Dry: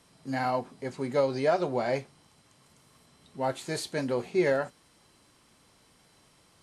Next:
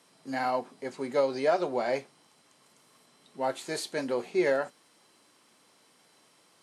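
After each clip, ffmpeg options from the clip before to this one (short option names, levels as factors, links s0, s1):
-af "highpass=250"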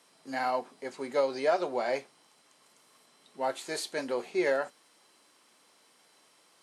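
-af "lowshelf=f=200:g=-11.5"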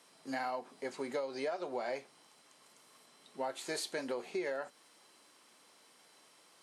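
-af "acompressor=threshold=0.02:ratio=8"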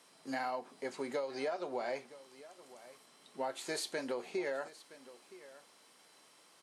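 -af "aecho=1:1:968:0.126"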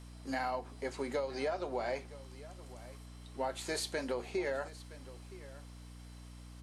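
-af "aeval=exprs='val(0)+0.00282*(sin(2*PI*60*n/s)+sin(2*PI*2*60*n/s)/2+sin(2*PI*3*60*n/s)/3+sin(2*PI*4*60*n/s)/4+sin(2*PI*5*60*n/s)/5)':c=same,volume=1.19"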